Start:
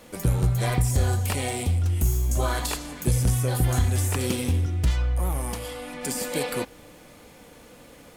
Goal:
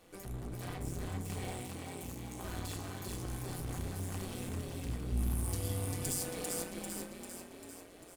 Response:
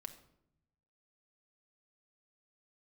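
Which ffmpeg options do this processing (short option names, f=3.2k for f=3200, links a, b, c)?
-filter_complex "[0:a]asoftclip=type=hard:threshold=-28dB,asettb=1/sr,asplit=3[a][b][c];[a]atrim=end=5.124[d];[b]atrim=start=5.12:end=6.23,asetpts=PTS-STARTPTS,afade=t=in:d=0.004:c=qsin,afade=t=out:st=1.106:d=0.004:c=qsin,bass=f=250:g=9,treble=f=4k:g=11[e];[c]atrim=start=6.226[f];[d][e]acrossfade=d=0.004:c1=hsin:c2=qsin[g];[g][f]acrossfade=d=0.004:c1=qsin:c2=hsin,asplit=9[h][i][j][k][l][m][n][o][p];[i]adelay=395,afreqshift=36,volume=-3dB[q];[j]adelay=790,afreqshift=72,volume=-7.9dB[r];[k]adelay=1185,afreqshift=108,volume=-12.8dB[s];[l]adelay=1580,afreqshift=144,volume=-17.6dB[t];[m]adelay=1975,afreqshift=180,volume=-22.5dB[u];[n]adelay=2370,afreqshift=216,volume=-27.4dB[v];[o]adelay=2765,afreqshift=252,volume=-32.3dB[w];[p]adelay=3160,afreqshift=288,volume=-37.2dB[x];[h][q][r][s][t][u][v][w][x]amix=inputs=9:normalize=0[y];[1:a]atrim=start_sample=2205,asetrate=79380,aresample=44100[z];[y][z]afir=irnorm=-1:irlink=0,tremolo=f=180:d=0.667,asettb=1/sr,asplit=3[aa][ab][ac];[aa]atrim=end=1.624[ad];[ab]atrim=start=1.62:end=2.44,asetpts=PTS-STARTPTS,afade=t=in:d=0.004:c=qsin,afade=t=out:st=0.816:d=0.004:c=qsin,highpass=f=180:p=1[ae];[ac]atrim=start=2.436[af];[ad][ae]acrossfade=d=0.004:c1=hsin:c2=qsin[ag];[ag][af]acrossfade=d=0.004:c1=qsin:c2=hsin"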